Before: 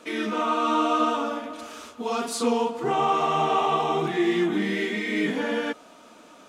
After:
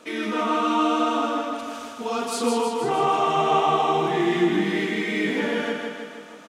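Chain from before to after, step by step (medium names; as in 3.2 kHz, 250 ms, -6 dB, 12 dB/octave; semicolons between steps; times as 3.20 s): feedback delay 158 ms, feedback 60%, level -4 dB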